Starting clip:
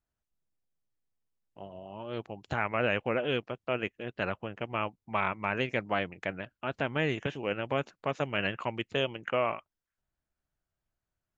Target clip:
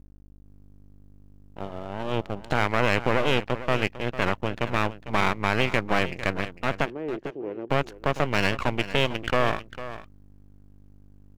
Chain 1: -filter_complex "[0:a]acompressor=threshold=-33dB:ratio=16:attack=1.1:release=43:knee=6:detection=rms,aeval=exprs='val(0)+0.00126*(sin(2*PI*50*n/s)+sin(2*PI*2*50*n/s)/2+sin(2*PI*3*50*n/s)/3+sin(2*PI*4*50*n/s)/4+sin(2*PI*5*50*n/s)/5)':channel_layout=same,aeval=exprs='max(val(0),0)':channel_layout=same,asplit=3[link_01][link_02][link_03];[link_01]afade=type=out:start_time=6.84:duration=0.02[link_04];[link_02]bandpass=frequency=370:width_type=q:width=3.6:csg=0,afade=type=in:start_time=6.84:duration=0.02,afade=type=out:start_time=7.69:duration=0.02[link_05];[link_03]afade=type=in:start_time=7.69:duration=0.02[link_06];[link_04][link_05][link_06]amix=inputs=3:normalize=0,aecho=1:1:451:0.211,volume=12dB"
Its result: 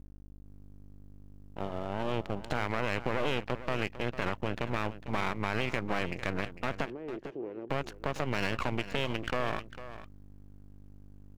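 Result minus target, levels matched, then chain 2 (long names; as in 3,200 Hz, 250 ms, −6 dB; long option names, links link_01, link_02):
downward compressor: peak gain reduction +10 dB
-filter_complex "[0:a]acompressor=threshold=-22dB:ratio=16:attack=1.1:release=43:knee=6:detection=rms,aeval=exprs='val(0)+0.00126*(sin(2*PI*50*n/s)+sin(2*PI*2*50*n/s)/2+sin(2*PI*3*50*n/s)/3+sin(2*PI*4*50*n/s)/4+sin(2*PI*5*50*n/s)/5)':channel_layout=same,aeval=exprs='max(val(0),0)':channel_layout=same,asplit=3[link_01][link_02][link_03];[link_01]afade=type=out:start_time=6.84:duration=0.02[link_04];[link_02]bandpass=frequency=370:width_type=q:width=3.6:csg=0,afade=type=in:start_time=6.84:duration=0.02,afade=type=out:start_time=7.69:duration=0.02[link_05];[link_03]afade=type=in:start_time=7.69:duration=0.02[link_06];[link_04][link_05][link_06]amix=inputs=3:normalize=0,aecho=1:1:451:0.211,volume=12dB"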